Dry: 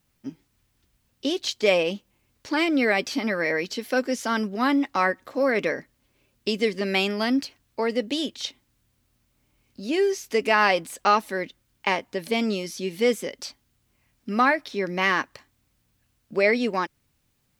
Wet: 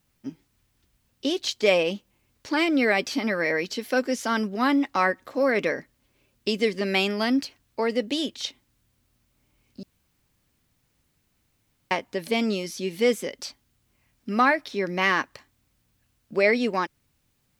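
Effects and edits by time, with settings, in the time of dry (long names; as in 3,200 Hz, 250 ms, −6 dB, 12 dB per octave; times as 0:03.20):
0:09.83–0:11.91: fill with room tone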